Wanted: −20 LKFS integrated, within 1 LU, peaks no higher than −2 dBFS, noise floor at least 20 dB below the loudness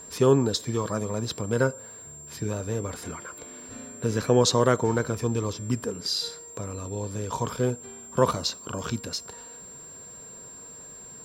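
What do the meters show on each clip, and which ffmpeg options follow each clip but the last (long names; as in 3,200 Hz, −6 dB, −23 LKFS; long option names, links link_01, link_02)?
interfering tone 7,400 Hz; level of the tone −42 dBFS; integrated loudness −27.0 LKFS; sample peak −6.0 dBFS; target loudness −20.0 LKFS
→ -af "bandreject=frequency=7400:width=30"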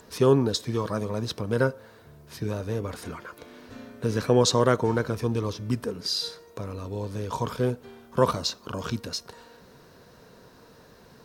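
interfering tone none found; integrated loudness −27.0 LKFS; sample peak −6.0 dBFS; target loudness −20.0 LKFS
→ -af "volume=7dB,alimiter=limit=-2dB:level=0:latency=1"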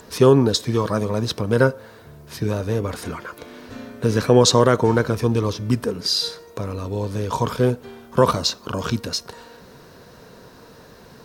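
integrated loudness −20.5 LKFS; sample peak −2.0 dBFS; background noise floor −46 dBFS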